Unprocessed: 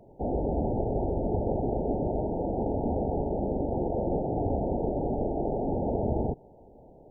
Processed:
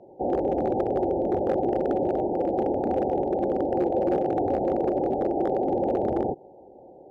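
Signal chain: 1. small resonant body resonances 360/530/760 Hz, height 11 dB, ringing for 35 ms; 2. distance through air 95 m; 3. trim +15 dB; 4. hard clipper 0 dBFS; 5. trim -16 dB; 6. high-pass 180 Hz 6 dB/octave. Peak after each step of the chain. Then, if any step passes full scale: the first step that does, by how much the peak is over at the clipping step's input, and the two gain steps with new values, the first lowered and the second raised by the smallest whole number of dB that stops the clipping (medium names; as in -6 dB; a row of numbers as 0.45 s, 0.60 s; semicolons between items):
-10.5 dBFS, -10.5 dBFS, +4.5 dBFS, 0.0 dBFS, -16.0 dBFS, -13.5 dBFS; step 3, 4.5 dB; step 3 +10 dB, step 5 -11 dB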